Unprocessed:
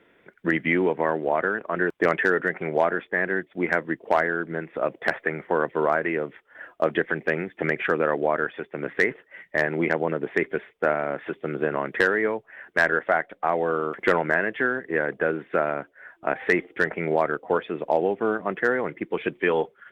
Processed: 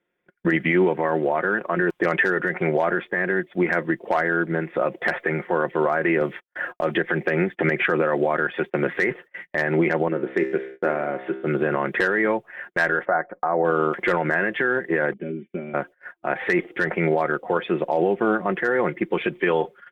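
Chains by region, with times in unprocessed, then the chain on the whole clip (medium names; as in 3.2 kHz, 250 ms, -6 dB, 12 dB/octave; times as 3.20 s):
6.21–9.02 s: gate -51 dBFS, range -24 dB + three bands compressed up and down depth 40%
10.08–11.47 s: high-pass 48 Hz + peaking EQ 300 Hz +6 dB 1.4 oct + feedback comb 66 Hz, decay 0.81 s, mix 70%
13.05–13.65 s: low-pass 1.5 kHz 24 dB/octave + bass shelf 200 Hz -4.5 dB
15.13–15.74 s: cascade formant filter i + comb 5.1 ms, depth 79%
whole clip: gate -44 dBFS, range -25 dB; comb 5.6 ms, depth 44%; peak limiter -17 dBFS; trim +6 dB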